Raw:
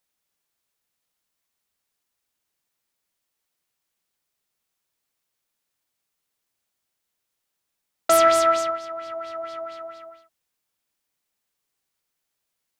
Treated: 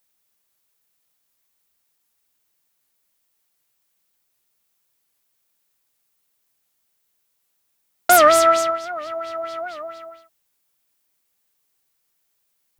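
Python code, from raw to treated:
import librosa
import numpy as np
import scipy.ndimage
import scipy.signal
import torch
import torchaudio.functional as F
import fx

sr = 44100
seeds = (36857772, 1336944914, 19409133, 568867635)

y = fx.high_shelf(x, sr, hz=11000.0, db=9.0)
y = fx.record_warp(y, sr, rpm=78.0, depth_cents=160.0)
y = y * librosa.db_to_amplitude(4.0)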